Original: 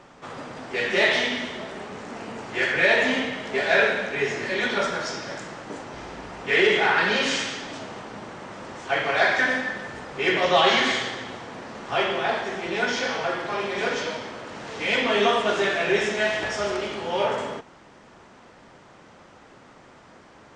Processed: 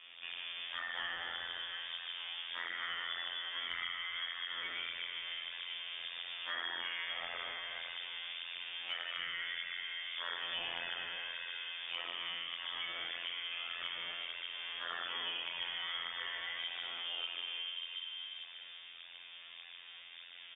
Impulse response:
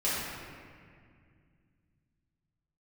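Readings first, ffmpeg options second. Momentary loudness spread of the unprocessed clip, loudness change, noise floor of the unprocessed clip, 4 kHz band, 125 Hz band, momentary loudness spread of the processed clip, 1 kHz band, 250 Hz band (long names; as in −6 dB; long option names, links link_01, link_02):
18 LU, −16.5 dB, −51 dBFS, −7.5 dB, below −25 dB, 7 LU, −21.0 dB, −34.0 dB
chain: -filter_complex "[0:a]asplit=2[link_01][link_02];[1:a]atrim=start_sample=2205,adelay=57[link_03];[link_02][link_03]afir=irnorm=-1:irlink=0,volume=-11.5dB[link_04];[link_01][link_04]amix=inputs=2:normalize=0,afftfilt=real='hypot(re,im)*cos(PI*b)':imag='0':win_size=2048:overlap=0.75,asplit=2[link_05][link_06];[link_06]adelay=358,lowpass=frequency=1400:poles=1,volume=-10dB,asplit=2[link_07][link_08];[link_08]adelay=358,lowpass=frequency=1400:poles=1,volume=0.37,asplit=2[link_09][link_10];[link_10]adelay=358,lowpass=frequency=1400:poles=1,volume=0.37,asplit=2[link_11][link_12];[link_12]adelay=358,lowpass=frequency=1400:poles=1,volume=0.37[link_13];[link_05][link_07][link_09][link_11][link_13]amix=inputs=5:normalize=0,flanger=delay=17:depth=7.3:speed=1.7,lowpass=frequency=3100:width_type=q:width=0.5098,lowpass=frequency=3100:width_type=q:width=0.6013,lowpass=frequency=3100:width_type=q:width=0.9,lowpass=frequency=3100:width_type=q:width=2.563,afreqshift=-3700,acompressor=threshold=-41dB:ratio=4,volume=1dB"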